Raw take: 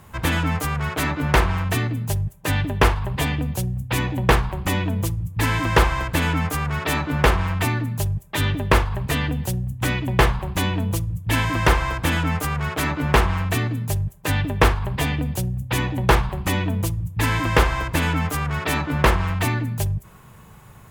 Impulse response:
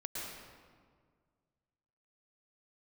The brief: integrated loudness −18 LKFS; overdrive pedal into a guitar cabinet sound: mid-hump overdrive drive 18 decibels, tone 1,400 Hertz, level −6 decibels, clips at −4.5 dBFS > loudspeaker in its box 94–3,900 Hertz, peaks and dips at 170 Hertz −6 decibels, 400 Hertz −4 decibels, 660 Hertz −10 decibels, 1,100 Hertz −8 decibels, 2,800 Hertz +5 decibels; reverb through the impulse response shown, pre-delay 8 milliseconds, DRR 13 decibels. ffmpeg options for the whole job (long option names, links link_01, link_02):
-filter_complex "[0:a]asplit=2[link_01][link_02];[1:a]atrim=start_sample=2205,adelay=8[link_03];[link_02][link_03]afir=irnorm=-1:irlink=0,volume=-14dB[link_04];[link_01][link_04]amix=inputs=2:normalize=0,asplit=2[link_05][link_06];[link_06]highpass=frequency=720:poles=1,volume=18dB,asoftclip=type=tanh:threshold=-4.5dB[link_07];[link_05][link_07]amix=inputs=2:normalize=0,lowpass=frequency=1400:poles=1,volume=-6dB,highpass=94,equalizer=frequency=170:width_type=q:width=4:gain=-6,equalizer=frequency=400:width_type=q:width=4:gain=-4,equalizer=frequency=660:width_type=q:width=4:gain=-10,equalizer=frequency=1100:width_type=q:width=4:gain=-8,equalizer=frequency=2800:width_type=q:width=4:gain=5,lowpass=frequency=3900:width=0.5412,lowpass=frequency=3900:width=1.3066,volume=3.5dB"